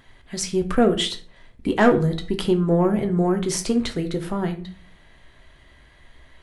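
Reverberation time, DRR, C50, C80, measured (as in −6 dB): 0.45 s, 5.0 dB, 12.5 dB, 17.5 dB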